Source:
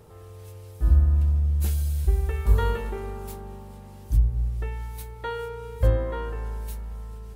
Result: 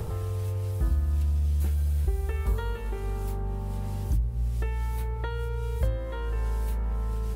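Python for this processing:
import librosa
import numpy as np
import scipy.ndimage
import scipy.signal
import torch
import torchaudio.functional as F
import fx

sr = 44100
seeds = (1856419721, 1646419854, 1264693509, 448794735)

y = fx.band_squash(x, sr, depth_pct=100)
y = y * 10.0 ** (-3.5 / 20.0)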